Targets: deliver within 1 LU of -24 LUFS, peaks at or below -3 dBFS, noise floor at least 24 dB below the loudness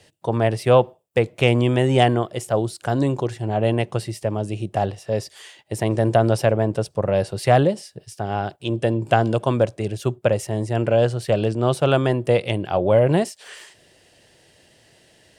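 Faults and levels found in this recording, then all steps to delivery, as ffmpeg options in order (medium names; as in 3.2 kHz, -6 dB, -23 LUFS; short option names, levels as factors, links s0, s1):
loudness -21.0 LUFS; peak level -2.0 dBFS; loudness target -24.0 LUFS
-> -af "volume=0.708"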